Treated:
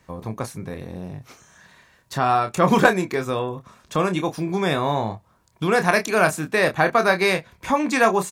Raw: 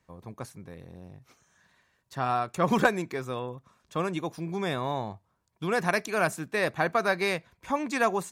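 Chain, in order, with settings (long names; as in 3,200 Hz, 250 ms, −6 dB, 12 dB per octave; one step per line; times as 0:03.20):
double-tracking delay 27 ms −8 dB
in parallel at +2 dB: downward compressor, threshold −41 dBFS, peak gain reduction 22.5 dB
on the sum: level +6 dB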